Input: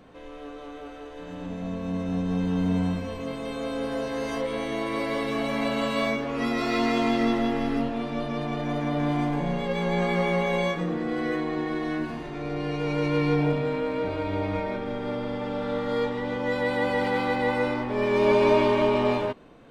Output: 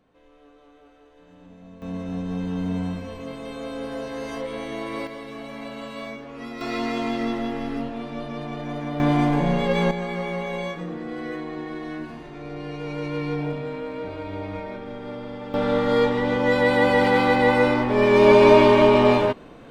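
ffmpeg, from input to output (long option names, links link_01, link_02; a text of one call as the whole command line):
ffmpeg -i in.wav -af "asetnsamples=nb_out_samples=441:pad=0,asendcmd='1.82 volume volume -2dB;5.07 volume volume -9dB;6.61 volume volume -2.5dB;9 volume volume 6dB;9.91 volume volume -4dB;15.54 volume volume 7dB',volume=-13dB" out.wav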